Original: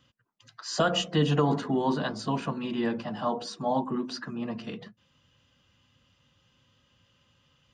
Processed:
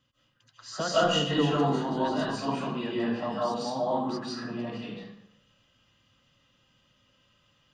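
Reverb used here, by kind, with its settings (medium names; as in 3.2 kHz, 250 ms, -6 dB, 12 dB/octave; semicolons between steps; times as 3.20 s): algorithmic reverb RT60 0.76 s, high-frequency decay 0.8×, pre-delay 115 ms, DRR -8 dB; trim -7.5 dB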